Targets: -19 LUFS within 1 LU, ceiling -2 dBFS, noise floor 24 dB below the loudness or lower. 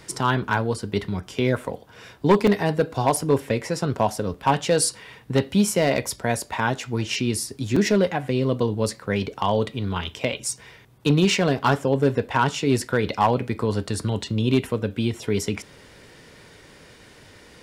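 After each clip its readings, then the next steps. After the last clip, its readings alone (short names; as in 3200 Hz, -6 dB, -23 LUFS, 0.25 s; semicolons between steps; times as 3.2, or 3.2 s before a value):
clipped 0.3%; flat tops at -10.5 dBFS; dropouts 4; longest dropout 3.9 ms; loudness -23.5 LUFS; peak -10.5 dBFS; loudness target -19.0 LUFS
-> clip repair -10.5 dBFS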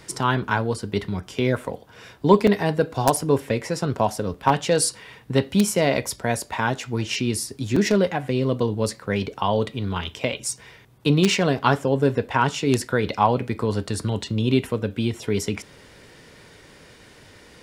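clipped 0.0%; dropouts 4; longest dropout 3.9 ms
-> interpolate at 2.47/3.16/4.34/7.76, 3.9 ms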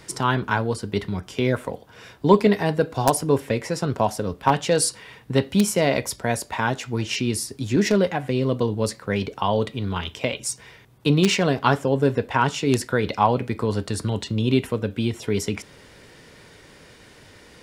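dropouts 0; loudness -23.0 LUFS; peak -1.5 dBFS; loudness target -19.0 LUFS
-> gain +4 dB; limiter -2 dBFS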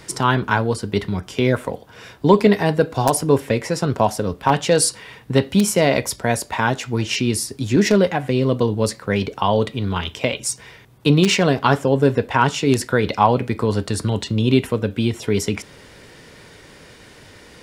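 loudness -19.5 LUFS; peak -2.0 dBFS; noise floor -45 dBFS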